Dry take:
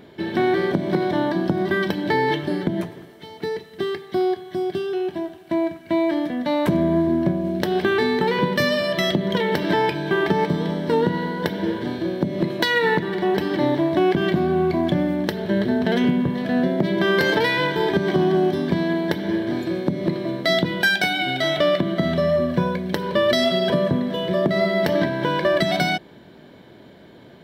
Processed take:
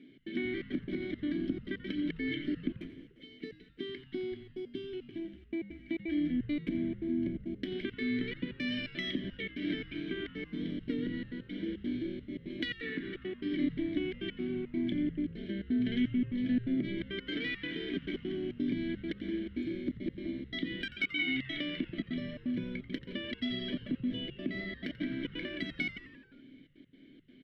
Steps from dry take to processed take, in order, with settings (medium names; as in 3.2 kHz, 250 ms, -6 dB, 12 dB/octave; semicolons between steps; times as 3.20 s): dynamic bell 2 kHz, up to +3 dB, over -31 dBFS, Q 0.88; compression, threshold -18 dBFS, peak gain reduction 6 dB; vowel filter i; trance gate "xx.xxxx.x.x" 171 bpm -60 dB; frequency-shifting echo 87 ms, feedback 60%, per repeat -130 Hz, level -15 dB